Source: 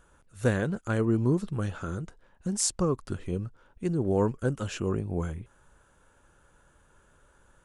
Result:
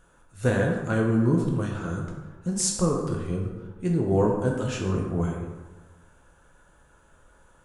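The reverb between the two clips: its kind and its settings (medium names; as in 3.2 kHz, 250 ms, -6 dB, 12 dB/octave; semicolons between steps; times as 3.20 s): plate-style reverb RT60 1.3 s, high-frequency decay 0.55×, DRR -1 dB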